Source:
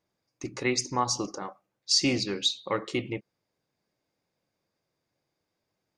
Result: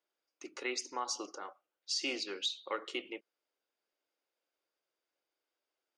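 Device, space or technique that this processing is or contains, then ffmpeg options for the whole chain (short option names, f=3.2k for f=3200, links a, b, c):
laptop speaker: -af "highpass=f=330:w=0.5412,highpass=f=330:w=1.3066,equalizer=f=1.4k:t=o:w=0.22:g=8,equalizer=f=3k:t=o:w=0.42:g=8,alimiter=limit=-16dB:level=0:latency=1:release=69,volume=-8.5dB"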